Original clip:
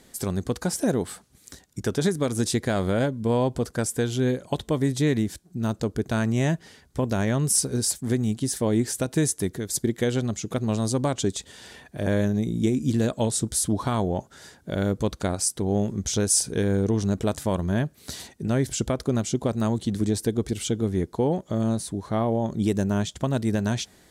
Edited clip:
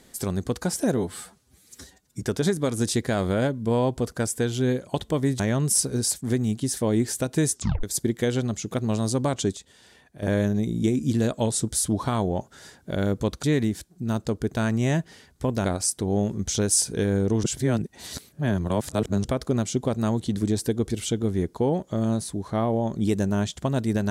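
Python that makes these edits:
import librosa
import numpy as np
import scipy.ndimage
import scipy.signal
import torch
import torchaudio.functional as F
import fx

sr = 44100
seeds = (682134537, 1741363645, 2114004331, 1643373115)

y = fx.edit(x, sr, fx.stretch_span(start_s=0.97, length_s=0.83, factor=1.5),
    fx.move(start_s=4.98, length_s=2.21, to_s=15.23),
    fx.tape_stop(start_s=9.32, length_s=0.31),
    fx.clip_gain(start_s=11.36, length_s=0.66, db=-9.0),
    fx.reverse_span(start_s=17.02, length_s=1.81), tone=tone)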